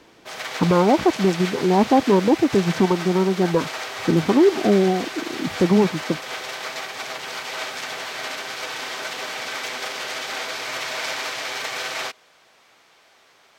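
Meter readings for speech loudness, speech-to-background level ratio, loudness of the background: -19.5 LUFS, 9.5 dB, -29.0 LUFS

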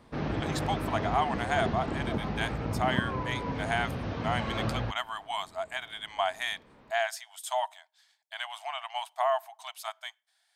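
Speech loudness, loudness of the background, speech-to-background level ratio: -33.5 LUFS, -33.5 LUFS, 0.0 dB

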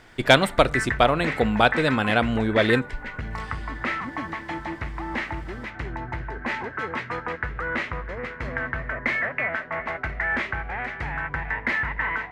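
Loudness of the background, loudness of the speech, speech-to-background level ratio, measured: -29.0 LUFS, -21.0 LUFS, 8.0 dB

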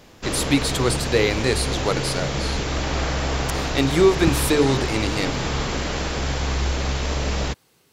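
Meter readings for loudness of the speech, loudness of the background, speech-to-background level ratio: -22.0 LUFS, -25.0 LUFS, 3.0 dB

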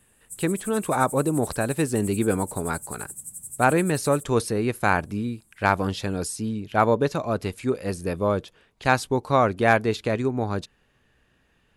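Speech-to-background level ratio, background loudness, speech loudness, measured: 12.0 dB, -36.5 LUFS, -24.5 LUFS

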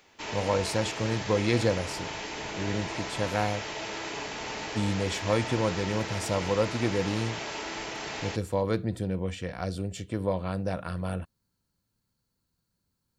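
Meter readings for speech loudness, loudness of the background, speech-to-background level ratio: -30.5 LUFS, -35.0 LUFS, 4.5 dB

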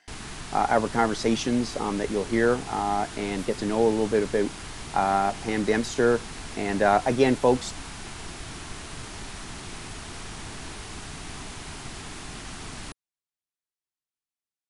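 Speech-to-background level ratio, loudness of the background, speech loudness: 13.0 dB, -38.0 LUFS, -25.0 LUFS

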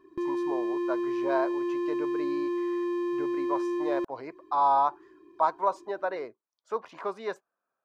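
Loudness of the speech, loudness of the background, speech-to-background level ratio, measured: -31.5 LUFS, -30.5 LUFS, -1.0 dB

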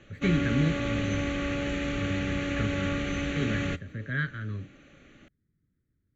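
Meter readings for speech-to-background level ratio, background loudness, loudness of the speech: -2.0 dB, -31.0 LUFS, -33.0 LUFS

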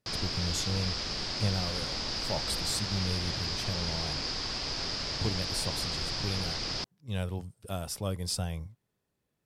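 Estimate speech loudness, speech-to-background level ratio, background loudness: -35.5 LUFS, -3.0 dB, -32.5 LUFS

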